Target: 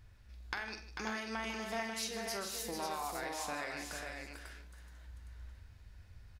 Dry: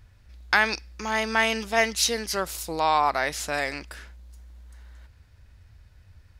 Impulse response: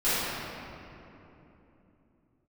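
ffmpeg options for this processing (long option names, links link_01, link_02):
-filter_complex "[0:a]acompressor=threshold=-33dB:ratio=6,aecho=1:1:45|153|444|543|824:0.335|0.211|0.501|0.531|0.119,asplit=2[link_01][link_02];[1:a]atrim=start_sample=2205,atrim=end_sample=4410[link_03];[link_02][link_03]afir=irnorm=-1:irlink=0,volume=-19dB[link_04];[link_01][link_04]amix=inputs=2:normalize=0,volume=-6.5dB"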